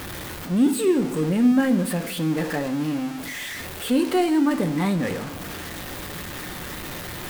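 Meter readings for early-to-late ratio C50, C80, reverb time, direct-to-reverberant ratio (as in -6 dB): 14.5 dB, 17.0 dB, 0.75 s, 8.5 dB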